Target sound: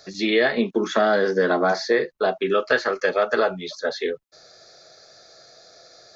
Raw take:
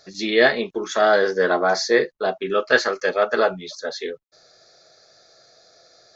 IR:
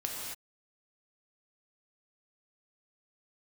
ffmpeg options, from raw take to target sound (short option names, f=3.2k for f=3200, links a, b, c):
-filter_complex "[0:a]asettb=1/sr,asplit=3[a][b][c];[a]atrim=end=0.574[d];[b]atrim=start=0.57:end=1.72,asetpts=PTS-STARTPTS,afade=t=in:d=0.004:c=qsin,afade=t=out:st=1.146:d=0.004:c=qsin,equalizer=f=220:w=1.7:g=10.5[e];[c]atrim=start=1.716[f];[d][e]acrossfade=d=0.004:c1=hsin:c2=qsin[g];[g][f]acrossfade=d=0.004:c1=qsin:c2=hsin,acrossover=split=160|3900[h][i][j];[h]acompressor=threshold=-49dB:ratio=4[k];[i]acompressor=threshold=-21dB:ratio=4[l];[j]acompressor=threshold=-48dB:ratio=4[m];[k][l][m]amix=inputs=3:normalize=0,volume=4dB"